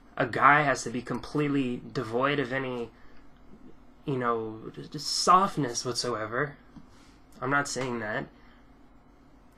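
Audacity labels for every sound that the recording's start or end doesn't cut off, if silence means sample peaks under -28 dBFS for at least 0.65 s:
4.080000	6.450000	sound
7.430000	8.220000	sound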